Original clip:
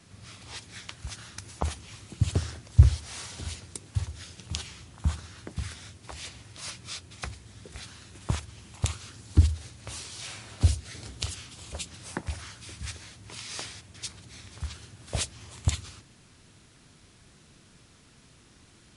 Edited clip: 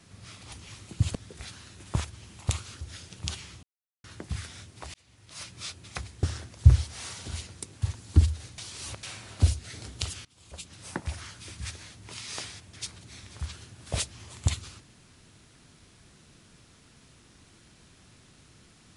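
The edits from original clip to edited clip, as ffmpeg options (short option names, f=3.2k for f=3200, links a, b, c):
-filter_complex "[0:a]asplit=12[a][b][c][d][e][f][g][h][i][j][k][l];[a]atrim=end=0.522[m];[b]atrim=start=1.728:end=2.362[n];[c]atrim=start=7.498:end=9.162[o];[d]atrim=start=4.078:end=4.9,asetpts=PTS-STARTPTS,afade=t=out:st=0.818:d=0.004:c=hsin[p];[e]atrim=start=4.9:end=5.31,asetpts=PTS-STARTPTS,volume=0[q];[f]atrim=start=5.31:end=6.21,asetpts=PTS-STARTPTS,afade=t=in:d=0.004:c=hsin,afade=t=out:st=0.896:d=0.004:c=hsin[r];[g]atrim=start=6.21:end=7.502,asetpts=PTS-STARTPTS,afade=t=in:d=0.67[s];[h]atrim=start=2.358:end=4.082[t];[i]atrim=start=9.158:end=9.792[u];[j]atrim=start=9.788:end=10.242,asetpts=PTS-STARTPTS,areverse[v];[k]atrim=start=10.238:end=11.46,asetpts=PTS-STARTPTS,afade=t=out:st=1.218:d=0.004:c=hsin:silence=0.0668344[w];[l]atrim=start=11.46,asetpts=PTS-STARTPTS,afade=t=in:d=0.73:silence=0.0668344[x];[m][n]acrossfade=d=0.004:c1=hsin:c2=hsin[y];[y][o]acrossfade=d=0.004:c1=hsin:c2=hsin[z];[p][q][r][s]concat=n=4:v=0:a=1[aa];[z][aa]acrossfade=d=0.004:c1=hsin:c2=hsin[ab];[ab][t]acrossfade=d=0.004:c1=hsin:c2=hsin[ac];[ac][u]acrossfade=d=0.004:c1=hsin:c2=hsin[ad];[ad][v]acrossfade=d=0.004:c1=hsin:c2=hsin[ae];[w][x]concat=n=2:v=0:a=1[af];[ae][af]acrossfade=d=0.004:c1=hsin:c2=hsin"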